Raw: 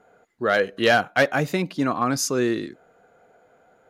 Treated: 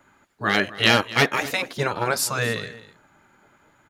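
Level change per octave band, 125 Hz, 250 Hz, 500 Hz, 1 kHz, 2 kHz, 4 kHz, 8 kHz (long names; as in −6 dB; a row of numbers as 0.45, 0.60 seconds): +1.5, −4.5, −4.0, −0.5, +1.5, +6.5, +1.0 decibels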